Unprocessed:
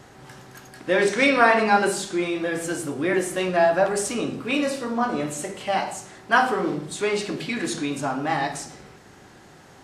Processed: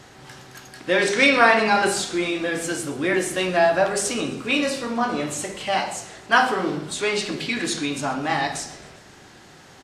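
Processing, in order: peaking EQ 4 kHz +6 dB 2.2 oct; de-hum 202.6 Hz, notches 34; on a send: frequency-shifting echo 133 ms, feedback 63%, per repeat -44 Hz, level -21 dB

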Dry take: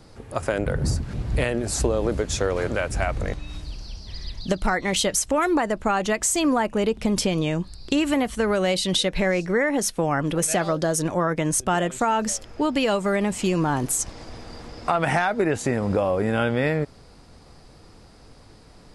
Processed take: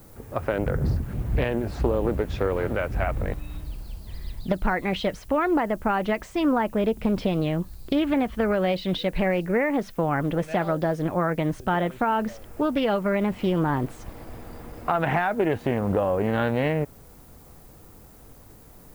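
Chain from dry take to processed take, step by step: distance through air 370 m; added noise violet -53 dBFS; loudspeaker Doppler distortion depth 0.33 ms

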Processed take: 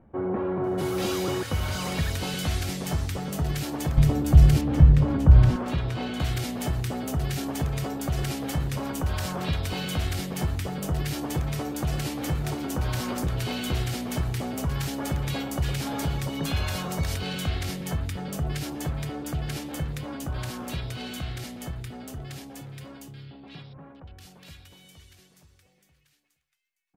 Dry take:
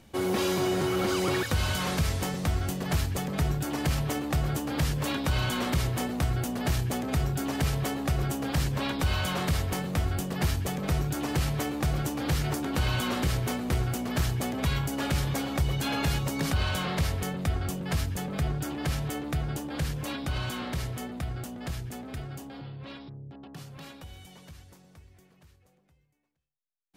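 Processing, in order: 3.97–5.56 s: RIAA curve playback; bands offset in time lows, highs 640 ms, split 1.5 kHz

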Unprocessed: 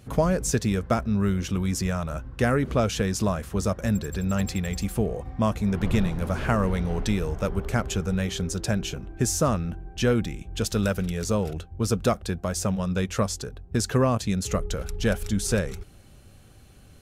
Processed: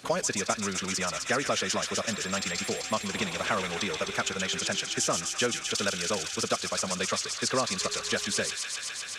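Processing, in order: high-pass 240 Hz 6 dB/octave; distance through air 100 m; time stretch by phase-locked vocoder 0.54×; tilt EQ +3.5 dB/octave; feedback echo behind a high-pass 128 ms, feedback 83%, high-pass 2.2 kHz, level -4 dB; three bands compressed up and down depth 40%; trim +1.5 dB

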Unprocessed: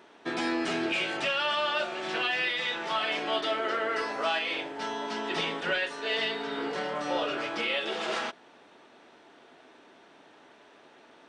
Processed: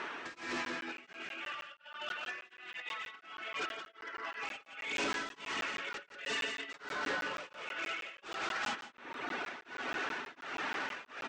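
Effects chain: high-order bell 1.7 kHz +9 dB; gated-style reverb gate 460 ms rising, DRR -7 dB; reverb removal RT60 1.3 s; compressor with a negative ratio -30 dBFS, ratio -0.5; saturation -32.5 dBFS, distortion -4 dB; steep low-pass 8 kHz 48 dB/octave; bass shelf 78 Hz -10.5 dB; on a send: delay 173 ms -6 dB; on the sum: crackling interface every 0.16 s, samples 512, zero, from 0.65 s; tremolo of two beating tones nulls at 1.4 Hz

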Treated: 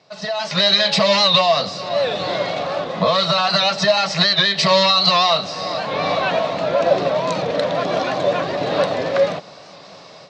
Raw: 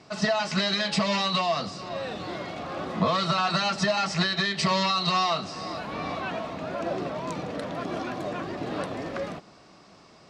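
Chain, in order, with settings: level rider gain up to 15.5 dB; cabinet simulation 140–7000 Hz, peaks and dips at 230 Hz -9 dB, 340 Hz -9 dB, 560 Hz +7 dB, 1.3 kHz -3 dB, 3.9 kHz +6 dB; warped record 78 rpm, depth 100 cents; trim -3 dB

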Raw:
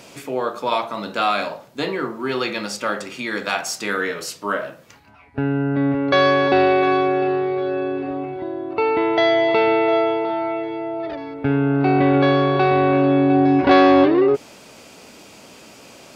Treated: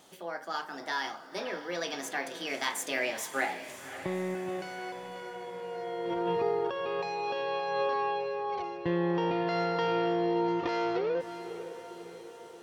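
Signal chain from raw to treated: Doppler pass-by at 7.04 s, 12 m/s, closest 8.7 m; compressor with a negative ratio -33 dBFS, ratio -1; on a send: echo that smears into a reverb 713 ms, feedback 56%, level -11.5 dB; on the sum: tape speed +28%

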